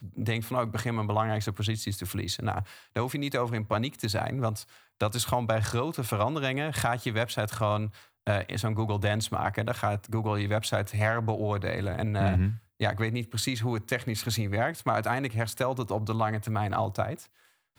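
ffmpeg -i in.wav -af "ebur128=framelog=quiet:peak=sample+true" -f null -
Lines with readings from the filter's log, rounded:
Integrated loudness:
  I:         -29.7 LUFS
  Threshold: -39.8 LUFS
Loudness range:
  LRA:         2.0 LU
  Threshold: -49.6 LUFS
  LRA low:   -30.9 LUFS
  LRA high:  -28.9 LUFS
Sample peak:
  Peak:      -11.8 dBFS
True peak:
  Peak:      -11.7 dBFS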